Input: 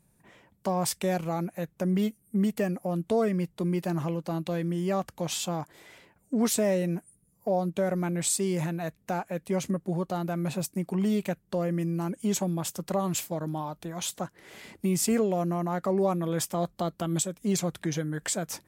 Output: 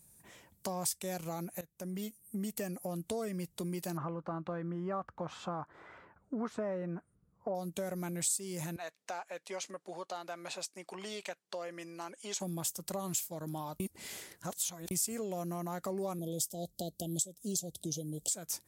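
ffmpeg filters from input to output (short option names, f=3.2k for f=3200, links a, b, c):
-filter_complex "[0:a]asettb=1/sr,asplit=3[a][b][c];[a]atrim=end=3.974[d];[b]atrim=start=3.97:end=7.55,asetpts=PTS-STARTPTS,afade=t=in:d=0.004:c=qsin,afade=t=out:st=3.576:d=0.004:c=qsin,lowpass=f=1.3k:t=q:w=3.3[e];[c]atrim=start=7.546[f];[d][e]acrossfade=d=0.004:c1=hsin:c2=qsin[g];[g][f]acrossfade=d=0.004:c1=qsin:c2=hsin,asettb=1/sr,asplit=3[h][i][j];[h]atrim=end=8.764[k];[i]atrim=start=8.76:end=12.4,asetpts=PTS-STARTPTS,afade=t=in:d=0.004:c=qsin,afade=t=out:st=3.636:d=0.004:c=qsin,highpass=630,lowpass=4.5k[l];[j]atrim=start=12.396[m];[k][l]acrossfade=d=0.004:c1=hsin:c2=qsin[n];[n][m]acrossfade=d=0.004:c1=qsin:c2=hsin,asettb=1/sr,asplit=3[o][p][q];[o]atrim=end=16.194[r];[p]atrim=start=16.19:end=18.31,asetpts=PTS-STARTPTS,afade=t=in:d=0.004:c=qsin,afade=t=out:st=2.116:d=0.004:c=qsin,asuperstop=centerf=1500:order=8:qfactor=0.59[s];[q]atrim=start=18.306[t];[r][s]acrossfade=d=0.004:c1=hsin:c2=qsin[u];[u][t]acrossfade=d=0.004:c1=qsin:c2=hsin,asplit=4[v][w][x][y];[v]atrim=end=1.61,asetpts=PTS-STARTPTS,afade=t=out:st=1.606:d=0.004:c=hsin:silence=0.141254[z];[w]atrim=start=1.61:end=13.802,asetpts=PTS-STARTPTS,afade=t=in:d=1.08:silence=0.141254[aa];[x]atrim=start=13.798:end=14.912,asetpts=PTS-STARTPTS,areverse[ab];[y]atrim=start=14.908[ac];[z][aa]concat=n=2:v=0:a=1[ad];[ad][ab]acrossfade=d=0.004:c1=hsin:c2=hsin[ae];[ae][ac]acrossfade=d=0.004:c1=hsin:c2=hsin,bass=f=250:g=-3,treble=f=4k:g=14,acompressor=threshold=-36dB:ratio=2.5,equalizer=f=76:t=o:w=1.2:g=7,volume=-2.5dB"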